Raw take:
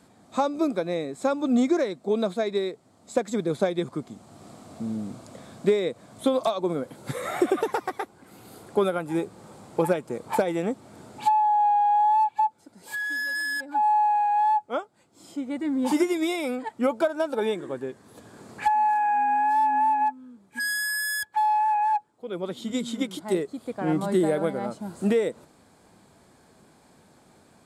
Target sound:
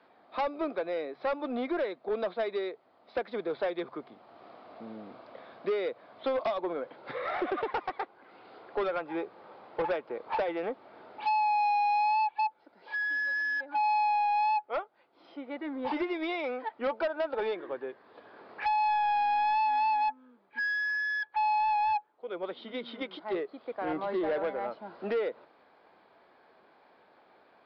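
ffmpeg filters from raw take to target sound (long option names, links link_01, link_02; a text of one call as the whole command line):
ffmpeg -i in.wav -filter_complex "[0:a]acrossover=split=380 3400:gain=0.0794 1 0.0794[link_01][link_02][link_03];[link_01][link_02][link_03]amix=inputs=3:normalize=0,bandreject=frequency=69.58:width_type=h:width=4,bandreject=frequency=139.16:width_type=h:width=4,aresample=11025,asoftclip=type=tanh:threshold=-24.5dB,aresample=44100" out.wav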